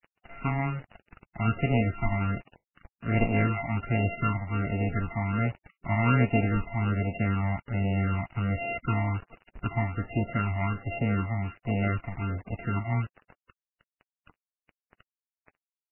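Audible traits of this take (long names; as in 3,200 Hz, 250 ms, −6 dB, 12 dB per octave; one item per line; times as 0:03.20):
a buzz of ramps at a fixed pitch in blocks of 64 samples
phaser sweep stages 12, 1.3 Hz, lowest notch 450–1,400 Hz
a quantiser's noise floor 8 bits, dither none
MP3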